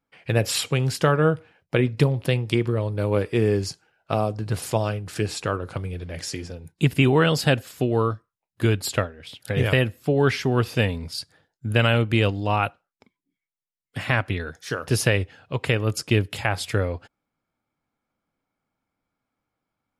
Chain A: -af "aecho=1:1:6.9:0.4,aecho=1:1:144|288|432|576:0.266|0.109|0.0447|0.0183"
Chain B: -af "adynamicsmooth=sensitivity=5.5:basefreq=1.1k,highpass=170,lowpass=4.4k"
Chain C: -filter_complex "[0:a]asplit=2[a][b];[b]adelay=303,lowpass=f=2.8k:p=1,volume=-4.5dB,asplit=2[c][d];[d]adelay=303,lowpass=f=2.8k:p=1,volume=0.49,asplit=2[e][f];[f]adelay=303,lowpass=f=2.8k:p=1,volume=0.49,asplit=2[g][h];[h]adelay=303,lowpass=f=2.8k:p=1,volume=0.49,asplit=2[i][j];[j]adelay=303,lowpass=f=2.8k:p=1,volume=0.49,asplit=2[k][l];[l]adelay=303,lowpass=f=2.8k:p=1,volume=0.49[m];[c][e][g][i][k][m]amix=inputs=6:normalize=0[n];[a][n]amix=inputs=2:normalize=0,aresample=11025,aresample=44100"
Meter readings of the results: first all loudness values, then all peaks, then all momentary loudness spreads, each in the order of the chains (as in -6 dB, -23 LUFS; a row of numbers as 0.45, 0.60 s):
-22.5, -25.5, -22.5 LUFS; -2.5, -3.5, -4.0 dBFS; 13, 15, 12 LU